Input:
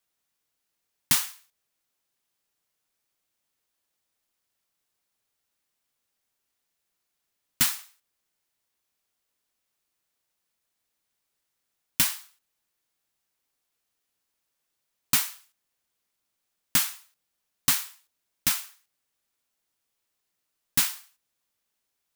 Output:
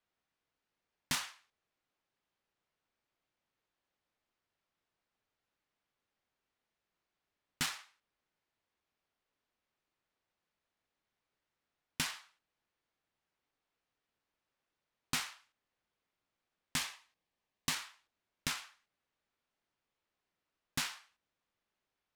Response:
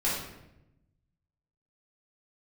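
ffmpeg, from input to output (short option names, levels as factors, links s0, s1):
-filter_complex "[0:a]asettb=1/sr,asplit=3[s0][s1][s2];[s0]atrim=end=16.764[s3];[s1]atrim=start=16.76:end=17.73,asetpts=PTS-STARTPTS,afade=t=in:d=0.004:c=qsin,afade=t=out:st=0.966:d=0.004:c=qsin,bandreject=f=1400:w=5.6[s4];[s2]atrim=start=17.726[s5];[s3][s4]acrossfade=d=0.004:c1=hsin:c2=qsin[s6];[s6][s5]acrossfade=d=0.004:c1=qsin:c2=hsin,alimiter=limit=0.188:level=0:latency=1:release=153,adynamicsmooth=sensitivity=4.5:basefreq=3400"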